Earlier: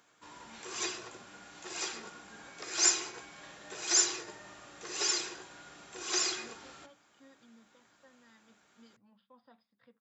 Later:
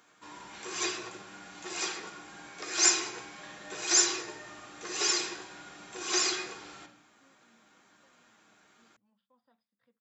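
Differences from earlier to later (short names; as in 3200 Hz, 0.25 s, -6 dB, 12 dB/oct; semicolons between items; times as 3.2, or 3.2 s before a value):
speech -9.5 dB; background: send +11.0 dB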